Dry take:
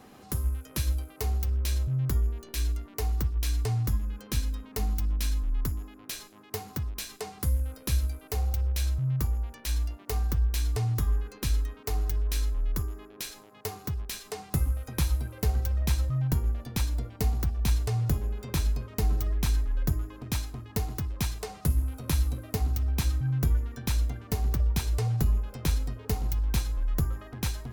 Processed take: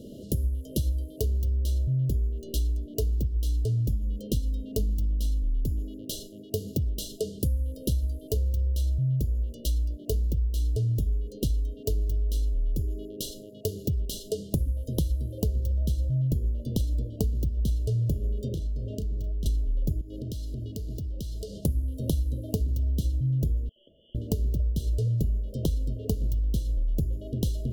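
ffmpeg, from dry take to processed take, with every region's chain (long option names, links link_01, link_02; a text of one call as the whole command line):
ffmpeg -i in.wav -filter_complex "[0:a]asettb=1/sr,asplit=3[link_01][link_02][link_03];[link_01]atrim=end=18.484[link_04];[link_02]atrim=start=18.48:end=19.46,asetpts=PTS-STARTPTS,afade=type=in:duration=0.004:curve=qsin,afade=type=out:start_time=0.976:duration=0.004:curve=qsin,highshelf=frequency=8800:gain=-10.5,acompressor=threshold=-38dB:ratio=10:attack=3.2:release=140:knee=1:detection=peak,asplit=2[link_05][link_06];[link_06]adelay=34,volume=-11dB[link_07];[link_05][link_07]amix=inputs=2:normalize=0,atrim=end_sample=43218[link_08];[link_03]atrim=start=19.456[link_09];[link_04][link_08]acrossfade=duration=0.004:curve1=hsin:curve2=qsin[link_10];[link_10][link_09]acrossfade=duration=0.004:curve1=qsin:curve2=hsin,asettb=1/sr,asplit=3[link_11][link_12][link_13];[link_11]atrim=end=20.014[link_14];[link_12]atrim=start=20.01:end=21.58,asetpts=PTS-STARTPTS,afade=type=in:duration=0.004:curve=qsin,afade=type=out:start_time=1.566:duration=0.004:curve=qsin,acompressor=threshold=-40dB:ratio=16:attack=3.2:release=140:knee=1:detection=peak,equalizer=frequency=4700:width_type=o:width=0.54:gain=4.5[link_15];[link_13]atrim=start=21.576[link_16];[link_14][link_15]acrossfade=duration=0.004:curve1=hsin:curve2=qsin[link_17];[link_17][link_16]acrossfade=duration=0.004:curve1=qsin:curve2=hsin,asettb=1/sr,asplit=3[link_18][link_19][link_20];[link_18]atrim=end=23.694[link_21];[link_19]atrim=start=23.69:end=24.15,asetpts=PTS-STARTPTS,afade=type=in:duration=0.004:curve=qsin,afade=type=out:start_time=0.456:duration=0.004:curve=qsin,highpass=950,acompressor=threshold=-49dB:ratio=12:attack=3.2:release=140:knee=1:detection=peak,lowpass=frequency=3000:width_type=q:width=0.5098,lowpass=frequency=3000:width_type=q:width=0.6013,lowpass=frequency=3000:width_type=q:width=0.9,lowpass=frequency=3000:width_type=q:width=2.563,afreqshift=-3500[link_22];[link_20]atrim=start=24.146[link_23];[link_21][link_22]acrossfade=duration=0.004:curve1=hsin:curve2=qsin[link_24];[link_24][link_23]acrossfade=duration=0.004:curve1=qsin:curve2=hsin,afftfilt=real='re*(1-between(b*sr/4096,660,2800))':imag='im*(1-between(b*sr/4096,660,2800))':win_size=4096:overlap=0.75,tiltshelf=frequency=1500:gain=5,acompressor=threshold=-30dB:ratio=6,volume=6dB" out.wav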